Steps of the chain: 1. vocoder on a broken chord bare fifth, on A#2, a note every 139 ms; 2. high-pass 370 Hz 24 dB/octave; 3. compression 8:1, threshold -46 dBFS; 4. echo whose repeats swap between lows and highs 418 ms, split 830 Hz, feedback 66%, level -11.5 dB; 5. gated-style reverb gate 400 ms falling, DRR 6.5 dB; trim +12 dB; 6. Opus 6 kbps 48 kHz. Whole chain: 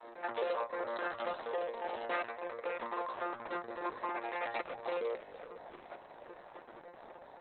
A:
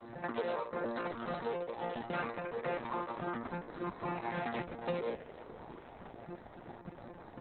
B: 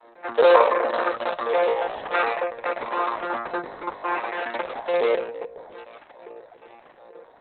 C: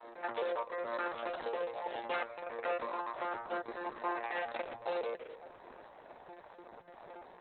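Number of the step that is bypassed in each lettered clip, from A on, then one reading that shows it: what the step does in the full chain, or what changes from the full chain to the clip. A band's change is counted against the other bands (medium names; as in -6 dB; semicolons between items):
2, 125 Hz band +19.5 dB; 3, crest factor change +6.0 dB; 4, momentary loudness spread change +2 LU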